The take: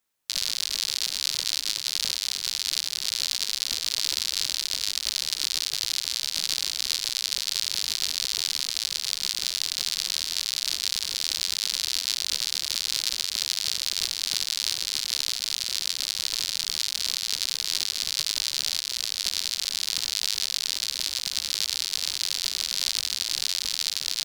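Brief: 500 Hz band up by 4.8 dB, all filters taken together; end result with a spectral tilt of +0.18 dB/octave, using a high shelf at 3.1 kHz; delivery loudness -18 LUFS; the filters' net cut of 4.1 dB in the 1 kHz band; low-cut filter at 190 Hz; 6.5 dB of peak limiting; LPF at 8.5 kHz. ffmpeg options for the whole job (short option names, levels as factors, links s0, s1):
-af "highpass=190,lowpass=8500,equalizer=f=500:t=o:g=8.5,equalizer=f=1000:t=o:g=-6.5,highshelf=f=3100:g=-8,volume=7.5,alimiter=limit=0.944:level=0:latency=1"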